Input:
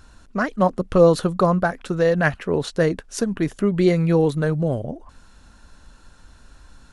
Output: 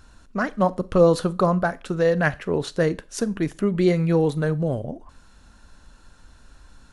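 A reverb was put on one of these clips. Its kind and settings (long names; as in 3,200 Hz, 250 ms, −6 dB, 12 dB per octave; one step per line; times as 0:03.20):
four-comb reverb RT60 0.3 s, combs from 30 ms, DRR 18 dB
level −2 dB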